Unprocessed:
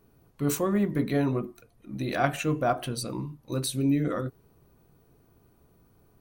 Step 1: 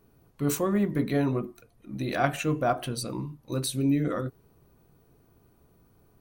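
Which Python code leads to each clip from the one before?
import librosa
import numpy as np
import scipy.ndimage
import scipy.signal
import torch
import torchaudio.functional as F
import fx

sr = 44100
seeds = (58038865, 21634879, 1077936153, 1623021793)

y = x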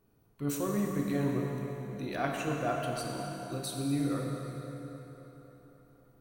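y = fx.echo_bbd(x, sr, ms=268, stages=4096, feedback_pct=66, wet_db=-10.5)
y = fx.rev_schroeder(y, sr, rt60_s=3.0, comb_ms=28, drr_db=1.0)
y = y * 10.0 ** (-8.0 / 20.0)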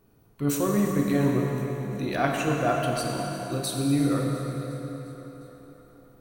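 y = fx.echo_feedback(x, sr, ms=354, feedback_pct=60, wet_db=-18.0)
y = y * 10.0 ** (7.5 / 20.0)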